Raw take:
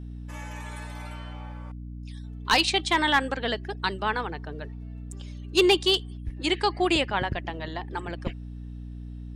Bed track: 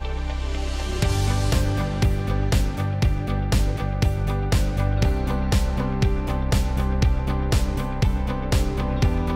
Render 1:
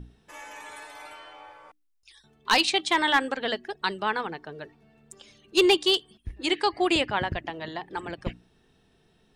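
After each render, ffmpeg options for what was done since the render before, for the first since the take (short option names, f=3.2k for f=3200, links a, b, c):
-af "bandreject=f=60:t=h:w=6,bandreject=f=120:t=h:w=6,bandreject=f=180:t=h:w=6,bandreject=f=240:t=h:w=6,bandreject=f=300:t=h:w=6"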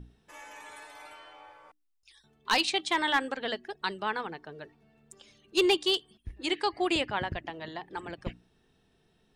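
-af "volume=-4.5dB"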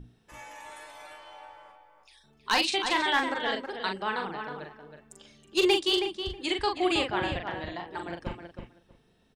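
-filter_complex "[0:a]asplit=2[a][b];[b]adelay=41,volume=-5dB[c];[a][c]amix=inputs=2:normalize=0,asplit=2[d][e];[e]adelay=320,lowpass=f=3k:p=1,volume=-6.5dB,asplit=2[f][g];[g]adelay=320,lowpass=f=3k:p=1,volume=0.16,asplit=2[h][i];[i]adelay=320,lowpass=f=3k:p=1,volume=0.16[j];[d][f][h][j]amix=inputs=4:normalize=0"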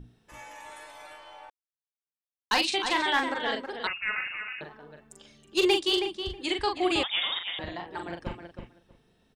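-filter_complex "[0:a]asettb=1/sr,asplit=3[a][b][c];[a]atrim=end=3.874[d];[b]atrim=start=3.87:end=4.61,asetpts=PTS-STARTPTS,afade=t=in:d=0.004:c=qsin,afade=t=out:st=0.736:d=0.004:c=qsin,lowpass=f=2.6k:t=q:w=0.5098,lowpass=f=2.6k:t=q:w=0.6013,lowpass=f=2.6k:t=q:w=0.9,lowpass=f=2.6k:t=q:w=2.563,afreqshift=-3000[e];[c]atrim=start=4.606[f];[d][e]acrossfade=d=0.004:c1=hsin:c2=qsin[g];[g][f]acrossfade=d=0.004:c1=qsin:c2=hsin,asettb=1/sr,asplit=3[h][i][j];[h]atrim=end=7.034[k];[i]atrim=start=7.03:end=7.59,asetpts=PTS-STARTPTS,afade=t=in:d=0.004:c=qsin,afade=t=out:st=0.556:d=0.004:c=qsin,lowpass=f=3.2k:t=q:w=0.5098,lowpass=f=3.2k:t=q:w=0.6013,lowpass=f=3.2k:t=q:w=0.9,lowpass=f=3.2k:t=q:w=2.563,afreqshift=-3800[l];[j]atrim=start=7.586[m];[k][l]acrossfade=d=0.004:c1=hsin:c2=qsin[n];[n][m]acrossfade=d=0.004:c1=qsin:c2=hsin,asplit=3[o][p][q];[o]atrim=end=1.5,asetpts=PTS-STARTPTS,afade=t=out:st=1.496:d=0.004:c=hsin[r];[p]atrim=start=1.5:end=2.51,asetpts=PTS-STARTPTS,volume=0[s];[q]atrim=start=2.51,asetpts=PTS-STARTPTS,afade=t=in:d=0.004:c=hsin[t];[r][s][t]concat=n=3:v=0:a=1"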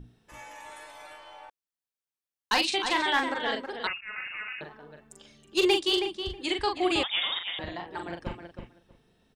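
-filter_complex "[0:a]asplit=2[a][b];[a]atrim=end=4.01,asetpts=PTS-STARTPTS,afade=t=out:st=4.006:d=0.004:c=hsin:silence=0.141254[c];[b]atrim=start=4.01,asetpts=PTS-STARTPTS,afade=t=in:d=0.56:c=qsin:silence=0.141254[d];[c][d]concat=n=2:v=0:a=1"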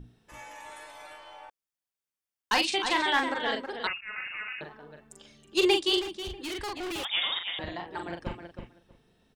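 -filter_complex "[0:a]asettb=1/sr,asplit=3[a][b][c];[a]atrim=end=1.364[d];[b]atrim=start=1.36:end=2.85,asetpts=PTS-STARTPTS,afade=t=in:d=0.004:c=qsin,afade=t=out:st=1.486:d=0.004:c=qsin,bandreject=f=4k:w=12[e];[c]atrim=start=2.846[f];[d][e]acrossfade=d=0.004:c1=hsin:c2=qsin[g];[g][f]acrossfade=d=0.004:c1=qsin:c2=hsin,asettb=1/sr,asplit=3[h][i][j];[h]atrim=end=6.014[k];[i]atrim=start=6.01:end=7.05,asetpts=PTS-STARTPTS,afade=t=in:d=0.004:c=qsin,afade=t=out:st=1.036:d=0.004:c=qsin,volume=33dB,asoftclip=hard,volume=-33dB[l];[j]atrim=start=7.046[m];[k][l]acrossfade=d=0.004:c1=hsin:c2=qsin[n];[n][m]acrossfade=d=0.004:c1=qsin:c2=hsin"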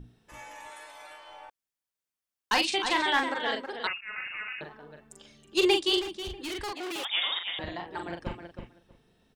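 -filter_complex "[0:a]asettb=1/sr,asplit=3[a][b][c];[a]atrim=end=0.684[d];[b]atrim=start=0.68:end=1.29,asetpts=PTS-STARTPTS,afade=t=in:d=0.004:c=qsin,afade=t=out:st=0.606:d=0.004:c=qsin,lowshelf=f=290:g=-8.5[e];[c]atrim=start=1.286[f];[d][e]acrossfade=d=0.004:c1=hsin:c2=qsin[g];[g][f]acrossfade=d=0.004:c1=qsin:c2=hsin,asettb=1/sr,asplit=3[h][i][j];[h]atrim=end=3.234[k];[i]atrim=start=3.23:end=4.11,asetpts=PTS-STARTPTS,afade=t=in:d=0.004:c=qsin,afade=t=out:st=0.876:d=0.004:c=qsin,lowshelf=f=190:g=-6[l];[j]atrim=start=4.106[m];[k][l]acrossfade=d=0.004:c1=hsin:c2=qsin[n];[n][m]acrossfade=d=0.004:c1=qsin:c2=hsin,asettb=1/sr,asplit=3[o][p][q];[o]atrim=end=6.724[r];[p]atrim=start=6.72:end=7.43,asetpts=PTS-STARTPTS,afade=t=in:d=0.004:c=qsin,afade=t=out:st=0.706:d=0.004:c=qsin,highpass=280[s];[q]atrim=start=7.426[t];[r][s]acrossfade=d=0.004:c1=hsin:c2=qsin[u];[u][t]acrossfade=d=0.004:c1=qsin:c2=hsin"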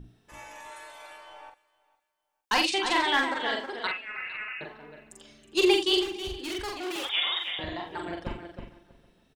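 -filter_complex "[0:a]asplit=2[a][b];[b]adelay=44,volume=-5.5dB[c];[a][c]amix=inputs=2:normalize=0,aecho=1:1:456|912:0.0794|0.0183"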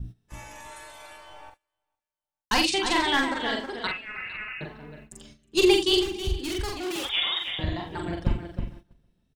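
-af "agate=range=-15dB:threshold=-52dB:ratio=16:detection=peak,bass=f=250:g=14,treble=f=4k:g=5"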